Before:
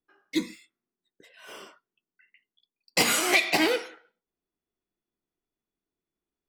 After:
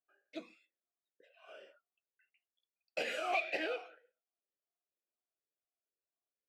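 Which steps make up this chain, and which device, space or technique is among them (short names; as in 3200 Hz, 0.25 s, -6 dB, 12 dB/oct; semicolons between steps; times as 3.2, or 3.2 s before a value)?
talk box (tube stage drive 16 dB, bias 0.3; vowel sweep a-e 2.1 Hz); gain +1.5 dB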